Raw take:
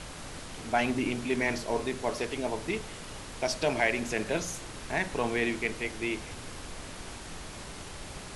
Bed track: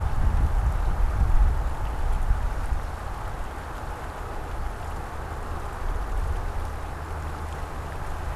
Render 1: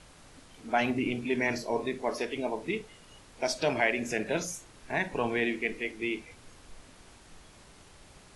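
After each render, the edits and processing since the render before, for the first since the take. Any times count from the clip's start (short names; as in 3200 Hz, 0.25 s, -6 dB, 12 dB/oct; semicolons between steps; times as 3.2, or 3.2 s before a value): noise print and reduce 12 dB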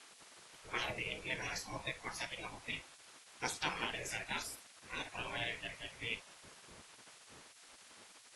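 notch 740 Hz, Q 14; spectral gate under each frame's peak -15 dB weak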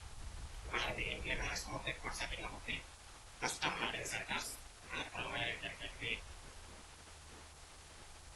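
add bed track -27 dB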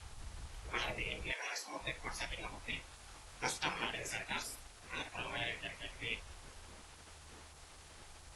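1.31–1.8 HPF 630 Hz -> 210 Hz 24 dB/oct; 2.89–3.58 doubler 22 ms -5 dB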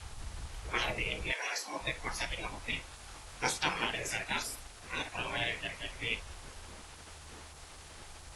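gain +5.5 dB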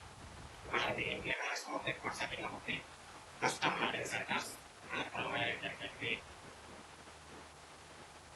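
HPF 130 Hz 12 dB/oct; high shelf 3100 Hz -9 dB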